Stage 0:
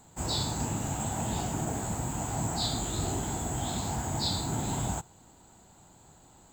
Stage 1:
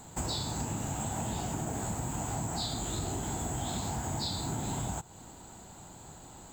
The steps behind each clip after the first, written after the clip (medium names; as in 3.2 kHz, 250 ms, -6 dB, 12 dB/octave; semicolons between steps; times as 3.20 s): compression 6:1, threshold -39 dBFS, peak gain reduction 12.5 dB; trim +7 dB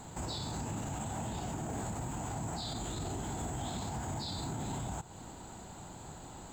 treble shelf 7.9 kHz -9 dB; peak limiter -32.5 dBFS, peak gain reduction 9.5 dB; trim +2.5 dB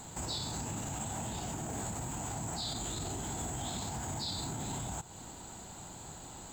treble shelf 2.7 kHz +7.5 dB; trim -1.5 dB